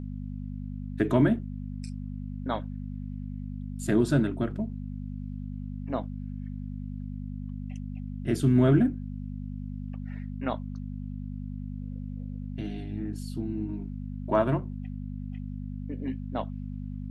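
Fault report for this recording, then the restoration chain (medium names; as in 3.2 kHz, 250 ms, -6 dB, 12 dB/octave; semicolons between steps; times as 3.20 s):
hum 50 Hz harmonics 5 -36 dBFS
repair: de-hum 50 Hz, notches 5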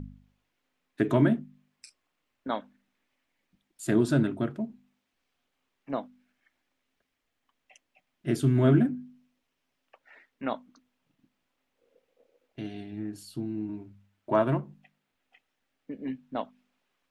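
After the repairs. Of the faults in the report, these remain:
nothing left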